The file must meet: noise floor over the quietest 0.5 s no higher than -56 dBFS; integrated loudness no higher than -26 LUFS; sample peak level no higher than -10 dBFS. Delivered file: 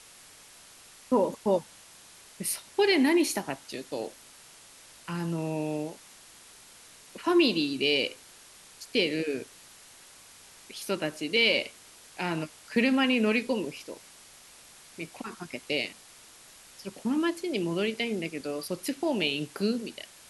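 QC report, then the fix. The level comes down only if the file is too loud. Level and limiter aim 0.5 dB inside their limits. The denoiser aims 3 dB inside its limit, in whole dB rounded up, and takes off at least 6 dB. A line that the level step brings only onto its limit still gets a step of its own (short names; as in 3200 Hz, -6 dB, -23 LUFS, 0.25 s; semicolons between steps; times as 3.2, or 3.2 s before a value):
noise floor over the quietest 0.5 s -53 dBFS: fail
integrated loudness -28.5 LUFS: OK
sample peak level -11.0 dBFS: OK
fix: denoiser 6 dB, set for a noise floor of -53 dBFS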